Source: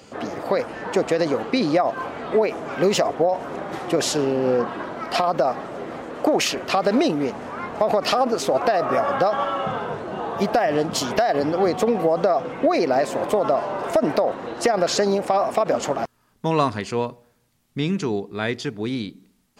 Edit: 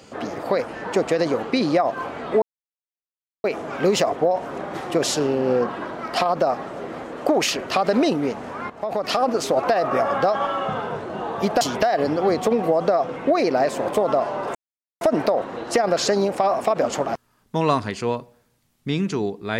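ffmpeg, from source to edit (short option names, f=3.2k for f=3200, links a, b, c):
-filter_complex "[0:a]asplit=5[a][b][c][d][e];[a]atrim=end=2.42,asetpts=PTS-STARTPTS,afade=t=out:st=2.416:d=0.004:c=hsin,apad=pad_dur=1.02[f];[b]atrim=start=2.42:end=7.68,asetpts=PTS-STARTPTS,afade=t=in:d=0.004:c=hsin,afade=t=out:st=5.256:d=0.004:c=hsin:silence=0.237137[g];[c]atrim=start=7.68:end=10.592,asetpts=PTS-STARTPTS,afade=t=in:d=0.58:silence=0.237137[h];[d]atrim=start=10.968:end=13.91,asetpts=PTS-STARTPTS,afade=t=out:st=2.938:d=0.004:c=hsin,apad=pad_dur=0.46[i];[e]atrim=start=13.91,asetpts=PTS-STARTPTS,afade=t=in:d=0.004:c=hsin[j];[f][g][h]concat=n=3:v=0:a=1[k];[i][j]concat=n=2:v=0:a=1[l];[k][l]acrossfade=d=0.004:c1=hsin:c2=hsin"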